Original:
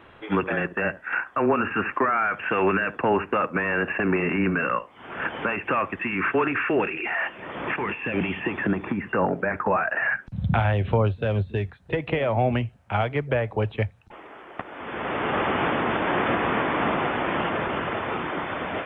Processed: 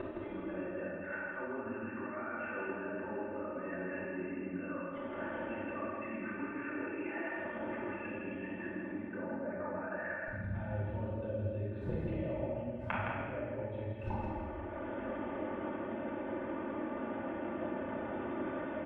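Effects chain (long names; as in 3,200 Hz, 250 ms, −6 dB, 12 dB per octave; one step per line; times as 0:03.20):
low-pass filter 1,400 Hz 6 dB per octave
parametric band 230 Hz +9 dB 2.6 octaves
notch filter 1,100 Hz, Q 26
comb filter 3.4 ms, depth 83%
downward compressor 8 to 1, threshold −27 dBFS, peak gain reduction 18.5 dB
brickwall limiter −25 dBFS, peak gain reduction 9 dB
gate with flip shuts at −37 dBFS, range −24 dB
single-tap delay 164 ms −4.5 dB
convolution reverb RT60 1.8 s, pre-delay 8 ms, DRR −6 dB
level +7 dB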